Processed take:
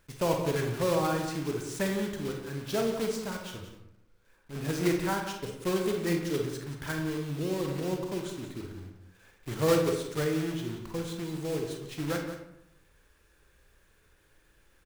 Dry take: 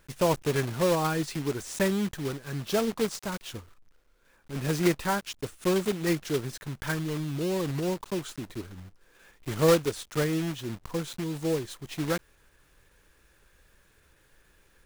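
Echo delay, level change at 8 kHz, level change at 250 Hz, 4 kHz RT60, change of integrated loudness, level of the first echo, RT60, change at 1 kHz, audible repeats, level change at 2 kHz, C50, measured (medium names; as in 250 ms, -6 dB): 178 ms, -3.5 dB, -2.0 dB, 0.50 s, -2.0 dB, -11.0 dB, 0.75 s, -2.0 dB, 1, -2.5 dB, 4.0 dB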